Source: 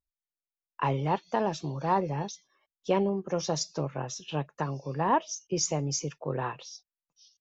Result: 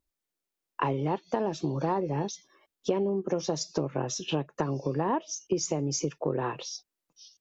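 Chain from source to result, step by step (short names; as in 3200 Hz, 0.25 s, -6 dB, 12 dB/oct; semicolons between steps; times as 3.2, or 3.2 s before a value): bell 330 Hz +9 dB 1.3 oct; compressor 6:1, threshold -32 dBFS, peak gain reduction 16 dB; gain +6.5 dB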